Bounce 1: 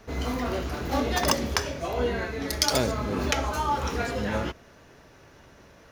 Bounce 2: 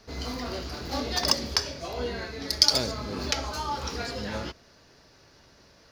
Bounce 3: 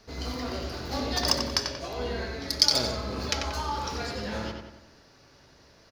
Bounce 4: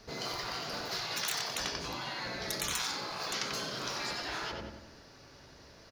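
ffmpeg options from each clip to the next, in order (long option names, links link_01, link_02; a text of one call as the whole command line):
ffmpeg -i in.wav -af "equalizer=frequency=4700:width_type=o:width=0.6:gain=14.5,volume=-5.5dB" out.wav
ffmpeg -i in.wav -filter_complex "[0:a]asplit=2[link_01][link_02];[link_02]adelay=92,lowpass=frequency=3500:poles=1,volume=-4dB,asplit=2[link_03][link_04];[link_04]adelay=92,lowpass=frequency=3500:poles=1,volume=0.51,asplit=2[link_05][link_06];[link_06]adelay=92,lowpass=frequency=3500:poles=1,volume=0.51,asplit=2[link_07][link_08];[link_08]adelay=92,lowpass=frequency=3500:poles=1,volume=0.51,asplit=2[link_09][link_10];[link_10]adelay=92,lowpass=frequency=3500:poles=1,volume=0.51,asplit=2[link_11][link_12];[link_12]adelay=92,lowpass=frequency=3500:poles=1,volume=0.51,asplit=2[link_13][link_14];[link_14]adelay=92,lowpass=frequency=3500:poles=1,volume=0.51[link_15];[link_01][link_03][link_05][link_07][link_09][link_11][link_13][link_15]amix=inputs=8:normalize=0,volume=-1.5dB" out.wav
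ffmpeg -i in.wav -af "afftfilt=real='re*lt(hypot(re,im),0.0562)':imag='im*lt(hypot(re,im),0.0562)':win_size=1024:overlap=0.75,volume=1.5dB" out.wav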